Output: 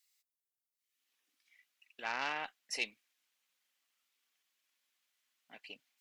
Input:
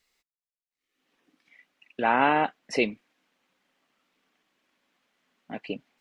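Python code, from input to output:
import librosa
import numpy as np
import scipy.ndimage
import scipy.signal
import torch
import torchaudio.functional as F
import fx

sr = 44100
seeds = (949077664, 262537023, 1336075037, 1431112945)

y = fx.cheby_harmonics(x, sr, harmonics=(4,), levels_db=(-19,), full_scale_db=-7.5)
y = scipy.signal.lfilter([1.0, -0.97], [1.0], y)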